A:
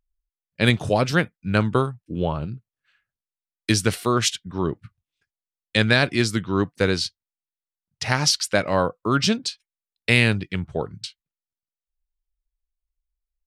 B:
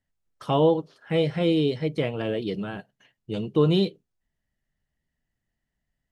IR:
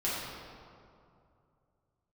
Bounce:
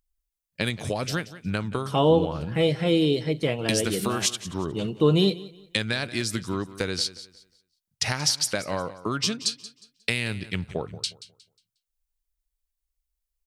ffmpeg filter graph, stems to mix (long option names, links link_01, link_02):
-filter_complex "[0:a]acompressor=threshold=-24dB:ratio=10,volume=-0.5dB,asplit=2[link_01][link_02];[link_02]volume=-16dB[link_03];[1:a]adelay=1450,volume=0.5dB,asplit=2[link_04][link_05];[link_05]volume=-19.5dB[link_06];[link_03][link_06]amix=inputs=2:normalize=0,aecho=0:1:180|360|540|720:1|0.29|0.0841|0.0244[link_07];[link_01][link_04][link_07]amix=inputs=3:normalize=0,highshelf=frequency=4400:gain=9.5"